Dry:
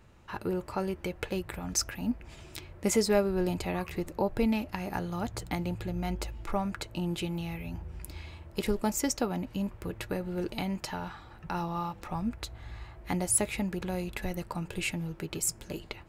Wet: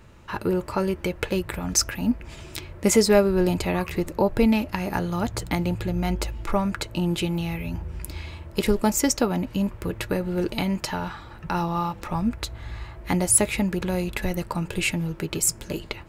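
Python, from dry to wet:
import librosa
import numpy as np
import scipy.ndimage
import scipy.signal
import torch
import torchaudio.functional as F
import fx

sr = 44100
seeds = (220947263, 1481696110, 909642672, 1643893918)

y = fx.notch(x, sr, hz=760.0, q=12.0)
y = F.gain(torch.from_numpy(y), 8.0).numpy()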